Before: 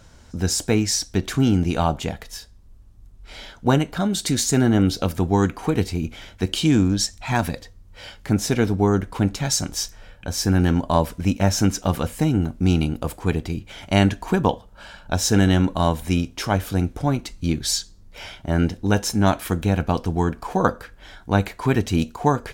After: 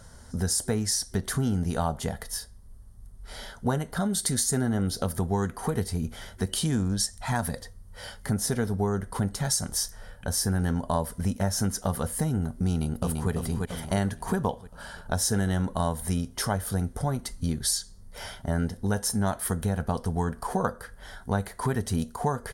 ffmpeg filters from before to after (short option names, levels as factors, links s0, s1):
-filter_complex "[0:a]asplit=2[s0][s1];[s1]afade=t=in:st=12.68:d=0.01,afade=t=out:st=13.31:d=0.01,aecho=0:1:340|680|1020|1360|1700|2040:0.501187|0.250594|0.125297|0.0626484|0.0313242|0.0156621[s2];[s0][s2]amix=inputs=2:normalize=0,superequalizer=6b=0.355:12b=0.282:13b=0.631:16b=3.55,acompressor=threshold=0.0501:ratio=2.5"